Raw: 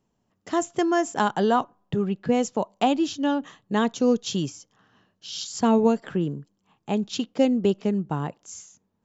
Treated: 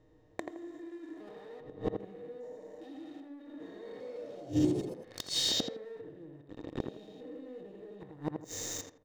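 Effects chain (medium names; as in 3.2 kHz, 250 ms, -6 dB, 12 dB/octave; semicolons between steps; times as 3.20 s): spectrogram pixelated in time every 400 ms; low-pass 6.5 kHz; resonant low shelf 120 Hz +14 dB, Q 3; comb 6.5 ms, depth 74%; waveshaping leveller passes 5; compression 6:1, threshold -46 dBFS, peak gain reduction 26 dB; small resonant body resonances 320/470/1800/3700 Hz, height 16 dB, ringing for 25 ms; inverted gate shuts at -27 dBFS, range -27 dB; 3.34–5.87 s: ever faster or slower copies 274 ms, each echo +3 st, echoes 3, each echo -6 dB; tape echo 82 ms, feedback 32%, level -3.5 dB, low-pass 1.7 kHz; trim +8.5 dB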